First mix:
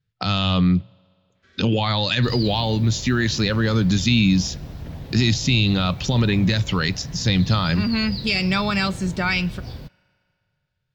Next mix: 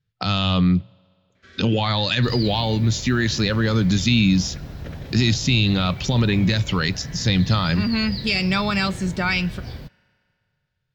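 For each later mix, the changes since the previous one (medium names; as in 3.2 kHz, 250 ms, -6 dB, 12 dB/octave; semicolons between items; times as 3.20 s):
first sound +8.5 dB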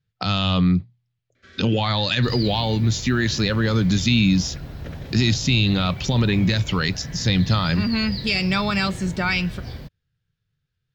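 speech: send off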